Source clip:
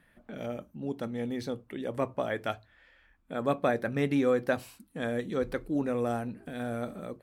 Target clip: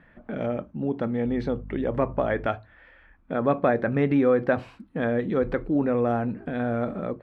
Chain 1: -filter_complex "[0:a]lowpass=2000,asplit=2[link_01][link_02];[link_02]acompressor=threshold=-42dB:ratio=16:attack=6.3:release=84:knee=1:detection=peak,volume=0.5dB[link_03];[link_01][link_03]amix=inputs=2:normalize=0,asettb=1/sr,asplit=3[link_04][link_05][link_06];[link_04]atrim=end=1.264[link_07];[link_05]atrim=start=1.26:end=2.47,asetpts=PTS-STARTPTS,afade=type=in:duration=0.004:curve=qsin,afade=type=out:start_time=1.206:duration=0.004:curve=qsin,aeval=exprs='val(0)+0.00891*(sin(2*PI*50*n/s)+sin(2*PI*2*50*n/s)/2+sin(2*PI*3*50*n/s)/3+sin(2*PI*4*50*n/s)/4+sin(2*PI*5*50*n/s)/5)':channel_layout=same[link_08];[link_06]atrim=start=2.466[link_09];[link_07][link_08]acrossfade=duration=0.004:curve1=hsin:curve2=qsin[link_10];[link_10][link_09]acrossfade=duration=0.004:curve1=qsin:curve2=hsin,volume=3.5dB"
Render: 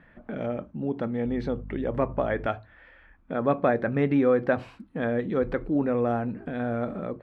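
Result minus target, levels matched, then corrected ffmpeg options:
downward compressor: peak gain reduction +7 dB
-filter_complex "[0:a]lowpass=2000,asplit=2[link_01][link_02];[link_02]acompressor=threshold=-34.5dB:ratio=16:attack=6.3:release=84:knee=1:detection=peak,volume=0.5dB[link_03];[link_01][link_03]amix=inputs=2:normalize=0,asettb=1/sr,asplit=3[link_04][link_05][link_06];[link_04]atrim=end=1.264[link_07];[link_05]atrim=start=1.26:end=2.47,asetpts=PTS-STARTPTS,afade=type=in:duration=0.004:curve=qsin,afade=type=out:start_time=1.206:duration=0.004:curve=qsin,aeval=exprs='val(0)+0.00891*(sin(2*PI*50*n/s)+sin(2*PI*2*50*n/s)/2+sin(2*PI*3*50*n/s)/3+sin(2*PI*4*50*n/s)/4+sin(2*PI*5*50*n/s)/5)':channel_layout=same[link_08];[link_06]atrim=start=2.466[link_09];[link_07][link_08]acrossfade=duration=0.004:curve1=hsin:curve2=qsin[link_10];[link_10][link_09]acrossfade=duration=0.004:curve1=qsin:curve2=hsin,volume=3.5dB"

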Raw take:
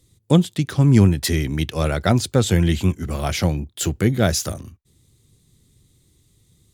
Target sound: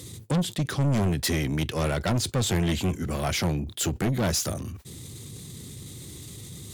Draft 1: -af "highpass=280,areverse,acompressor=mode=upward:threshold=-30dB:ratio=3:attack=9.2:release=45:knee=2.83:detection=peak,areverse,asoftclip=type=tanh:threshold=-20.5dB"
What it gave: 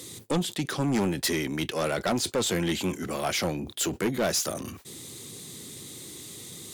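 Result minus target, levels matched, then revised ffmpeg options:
125 Hz band −7.0 dB
-af "highpass=91,areverse,acompressor=mode=upward:threshold=-30dB:ratio=3:attack=9.2:release=45:knee=2.83:detection=peak,areverse,asoftclip=type=tanh:threshold=-20.5dB"

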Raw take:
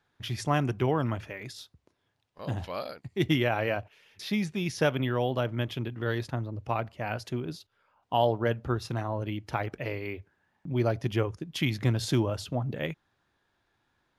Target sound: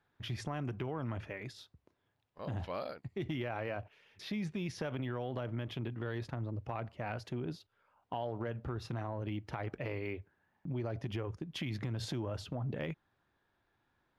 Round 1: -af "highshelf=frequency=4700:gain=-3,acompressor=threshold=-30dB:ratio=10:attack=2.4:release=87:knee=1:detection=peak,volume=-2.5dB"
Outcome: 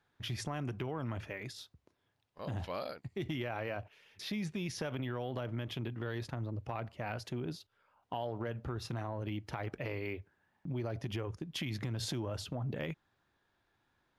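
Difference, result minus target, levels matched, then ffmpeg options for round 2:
8,000 Hz band +6.0 dB
-af "highshelf=frequency=4700:gain=-12.5,acompressor=threshold=-30dB:ratio=10:attack=2.4:release=87:knee=1:detection=peak,volume=-2.5dB"

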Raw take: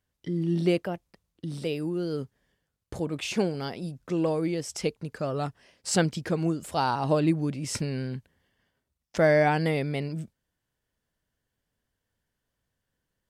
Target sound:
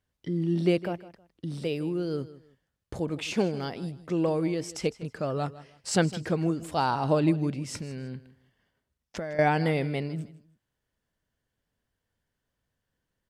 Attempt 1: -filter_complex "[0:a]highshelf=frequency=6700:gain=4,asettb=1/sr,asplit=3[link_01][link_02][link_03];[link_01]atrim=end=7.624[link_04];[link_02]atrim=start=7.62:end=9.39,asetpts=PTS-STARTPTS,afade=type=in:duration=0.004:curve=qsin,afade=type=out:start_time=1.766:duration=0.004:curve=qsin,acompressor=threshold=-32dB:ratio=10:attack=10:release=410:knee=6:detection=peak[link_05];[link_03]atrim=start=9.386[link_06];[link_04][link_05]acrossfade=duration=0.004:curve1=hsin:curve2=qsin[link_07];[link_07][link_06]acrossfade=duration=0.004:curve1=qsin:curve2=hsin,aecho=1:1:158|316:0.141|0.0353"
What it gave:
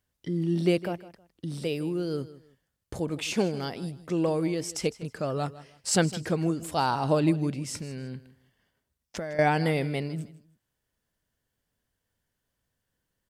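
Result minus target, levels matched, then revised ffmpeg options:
8,000 Hz band +5.0 dB
-filter_complex "[0:a]highshelf=frequency=6700:gain=-5.5,asettb=1/sr,asplit=3[link_01][link_02][link_03];[link_01]atrim=end=7.624[link_04];[link_02]atrim=start=7.62:end=9.39,asetpts=PTS-STARTPTS,afade=type=in:duration=0.004:curve=qsin,afade=type=out:start_time=1.766:duration=0.004:curve=qsin,acompressor=threshold=-32dB:ratio=10:attack=10:release=410:knee=6:detection=peak[link_05];[link_03]atrim=start=9.386[link_06];[link_04][link_05]acrossfade=duration=0.004:curve1=hsin:curve2=qsin[link_07];[link_07][link_06]acrossfade=duration=0.004:curve1=qsin:curve2=hsin,aecho=1:1:158|316:0.141|0.0353"

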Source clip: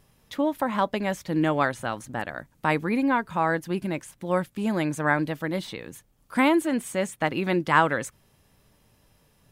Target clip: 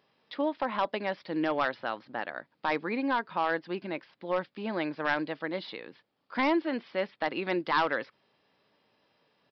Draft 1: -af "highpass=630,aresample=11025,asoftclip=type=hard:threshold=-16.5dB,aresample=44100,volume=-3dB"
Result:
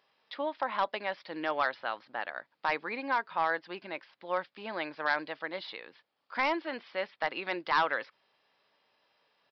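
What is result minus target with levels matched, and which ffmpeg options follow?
250 Hz band −8.0 dB
-af "highpass=310,aresample=11025,asoftclip=type=hard:threshold=-16.5dB,aresample=44100,volume=-3dB"

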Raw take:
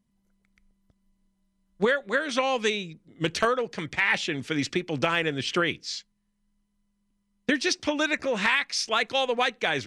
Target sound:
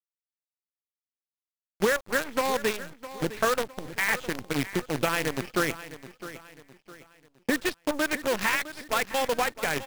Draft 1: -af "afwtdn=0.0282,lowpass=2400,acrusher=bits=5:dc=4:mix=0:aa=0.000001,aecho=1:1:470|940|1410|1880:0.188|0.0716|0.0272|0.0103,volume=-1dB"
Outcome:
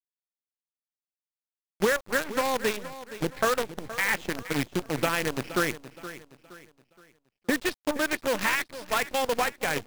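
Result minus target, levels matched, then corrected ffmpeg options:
echo 189 ms early
-af "afwtdn=0.0282,lowpass=2400,acrusher=bits=5:dc=4:mix=0:aa=0.000001,aecho=1:1:659|1318|1977|2636:0.188|0.0716|0.0272|0.0103,volume=-1dB"

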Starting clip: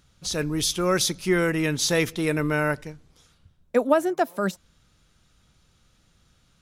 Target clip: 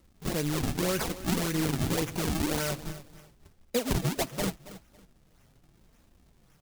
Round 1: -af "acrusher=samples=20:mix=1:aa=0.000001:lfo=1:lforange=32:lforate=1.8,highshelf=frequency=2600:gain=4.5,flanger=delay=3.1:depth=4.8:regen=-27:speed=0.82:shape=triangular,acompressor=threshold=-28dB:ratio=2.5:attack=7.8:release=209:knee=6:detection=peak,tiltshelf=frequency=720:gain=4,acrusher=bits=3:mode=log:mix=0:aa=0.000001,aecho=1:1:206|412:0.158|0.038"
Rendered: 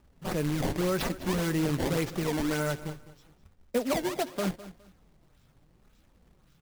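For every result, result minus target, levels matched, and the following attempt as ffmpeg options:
sample-and-hold swept by an LFO: distortion −8 dB; echo 70 ms early; 4,000 Hz band −3.0 dB
-af "acrusher=samples=51:mix=1:aa=0.000001:lfo=1:lforange=81.6:lforate=1.8,highshelf=frequency=2600:gain=4.5,flanger=delay=3.1:depth=4.8:regen=-27:speed=0.82:shape=triangular,acompressor=threshold=-28dB:ratio=2.5:attack=7.8:release=209:knee=6:detection=peak,tiltshelf=frequency=720:gain=4,acrusher=bits=3:mode=log:mix=0:aa=0.000001,aecho=1:1:206|412:0.158|0.038"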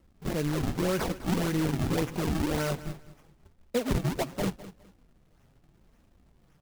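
echo 70 ms early; 4,000 Hz band −4.0 dB
-af "acrusher=samples=51:mix=1:aa=0.000001:lfo=1:lforange=81.6:lforate=1.8,highshelf=frequency=2600:gain=4.5,flanger=delay=3.1:depth=4.8:regen=-27:speed=0.82:shape=triangular,acompressor=threshold=-28dB:ratio=2.5:attack=7.8:release=209:knee=6:detection=peak,tiltshelf=frequency=720:gain=4,acrusher=bits=3:mode=log:mix=0:aa=0.000001,aecho=1:1:276|552:0.158|0.038"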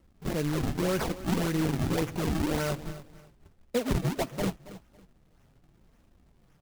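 4,000 Hz band −4.0 dB
-af "acrusher=samples=51:mix=1:aa=0.000001:lfo=1:lforange=81.6:lforate=1.8,highshelf=frequency=2600:gain=14,flanger=delay=3.1:depth=4.8:regen=-27:speed=0.82:shape=triangular,acompressor=threshold=-28dB:ratio=2.5:attack=7.8:release=209:knee=6:detection=peak,tiltshelf=frequency=720:gain=4,acrusher=bits=3:mode=log:mix=0:aa=0.000001,aecho=1:1:276|552:0.158|0.038"

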